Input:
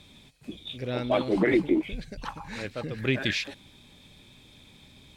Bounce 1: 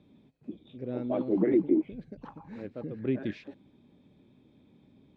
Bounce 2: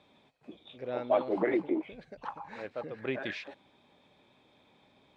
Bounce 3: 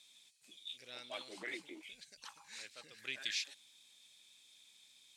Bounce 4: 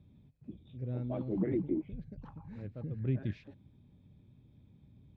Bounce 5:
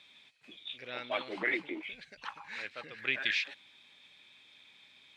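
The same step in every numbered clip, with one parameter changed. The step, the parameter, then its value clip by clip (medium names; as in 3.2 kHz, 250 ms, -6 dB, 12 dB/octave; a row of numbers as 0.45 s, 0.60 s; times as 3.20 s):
band-pass filter, frequency: 280 Hz, 740 Hz, 7.7 kHz, 110 Hz, 2.2 kHz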